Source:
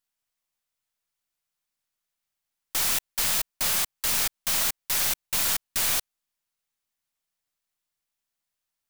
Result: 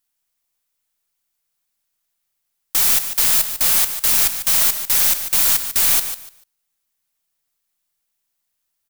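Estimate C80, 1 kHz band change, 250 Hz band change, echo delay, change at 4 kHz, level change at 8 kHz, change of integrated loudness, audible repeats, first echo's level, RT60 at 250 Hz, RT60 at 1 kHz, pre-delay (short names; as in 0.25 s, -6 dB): none, +4.5 dB, +4.5 dB, 0.147 s, +6.0 dB, +8.5 dB, +10.0 dB, 2, -10.0 dB, none, none, none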